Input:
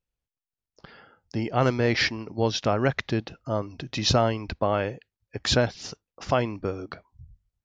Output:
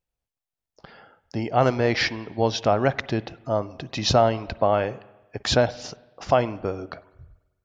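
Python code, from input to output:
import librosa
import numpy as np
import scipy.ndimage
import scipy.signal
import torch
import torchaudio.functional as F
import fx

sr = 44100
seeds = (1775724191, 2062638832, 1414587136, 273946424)

y = fx.peak_eq(x, sr, hz=710.0, db=6.5, octaves=0.81)
y = fx.rev_spring(y, sr, rt60_s=1.1, pass_ms=(48, 53), chirp_ms=55, drr_db=18.0)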